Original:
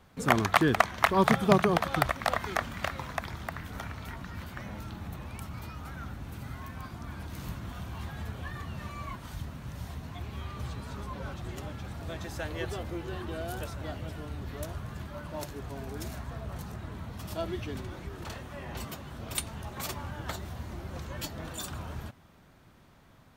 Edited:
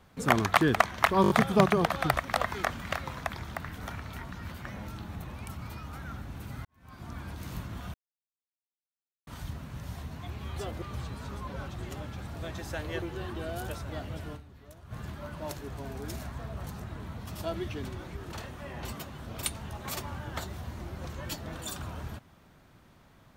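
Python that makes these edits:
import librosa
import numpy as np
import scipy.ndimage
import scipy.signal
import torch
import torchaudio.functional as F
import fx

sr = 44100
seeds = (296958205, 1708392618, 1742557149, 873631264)

y = fx.edit(x, sr, fx.stutter(start_s=1.22, slice_s=0.02, count=5),
    fx.fade_in_span(start_s=6.57, length_s=0.42, curve='qua'),
    fx.silence(start_s=7.86, length_s=1.33),
    fx.move(start_s=12.68, length_s=0.26, to_s=10.48),
    fx.fade_down_up(start_s=14.27, length_s=0.58, db=-14.0, fade_s=0.28, curve='exp'), tone=tone)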